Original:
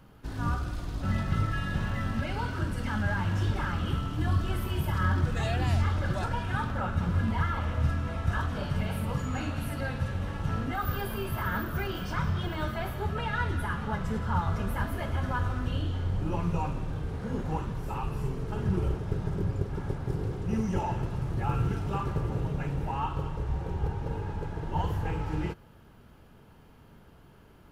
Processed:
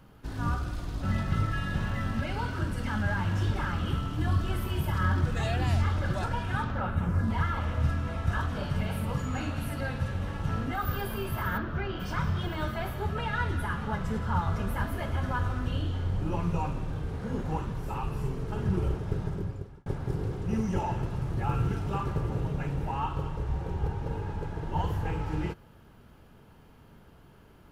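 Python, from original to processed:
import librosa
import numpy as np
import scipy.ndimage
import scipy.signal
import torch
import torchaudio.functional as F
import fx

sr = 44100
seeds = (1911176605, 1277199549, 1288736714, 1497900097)

y = fx.peak_eq(x, sr, hz=fx.line((6.62, 13000.0), (7.29, 2500.0)), db=-13.0, octaves=0.77, at=(6.62, 7.29), fade=0.02)
y = fx.air_absorb(y, sr, metres=180.0, at=(11.57, 11.99), fade=0.02)
y = fx.edit(y, sr, fx.fade_out_span(start_s=19.2, length_s=0.66), tone=tone)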